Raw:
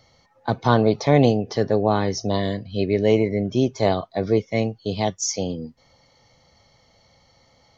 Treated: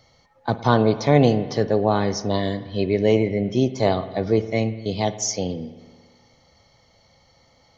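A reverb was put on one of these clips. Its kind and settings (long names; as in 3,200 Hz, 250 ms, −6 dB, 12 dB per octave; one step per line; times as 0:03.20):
spring reverb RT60 1.6 s, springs 54 ms, chirp 50 ms, DRR 12.5 dB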